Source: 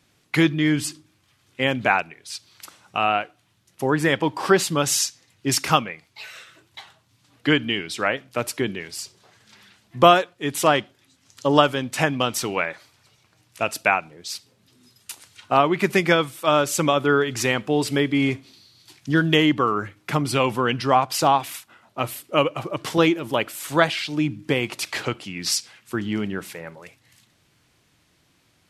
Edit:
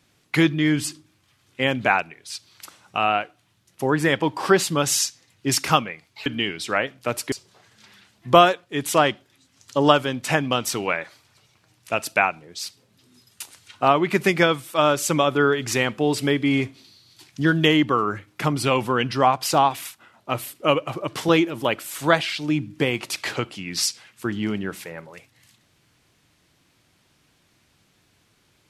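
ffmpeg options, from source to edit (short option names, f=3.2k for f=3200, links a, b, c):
-filter_complex "[0:a]asplit=3[a][b][c];[a]atrim=end=6.262[d];[b]atrim=start=7.558:end=8.622[e];[c]atrim=start=9.008[f];[d][e]acrossfade=d=0.004:c1=hsin:c2=hsin[g];[g][f]acrossfade=d=0.004:c1=hsin:c2=hsin"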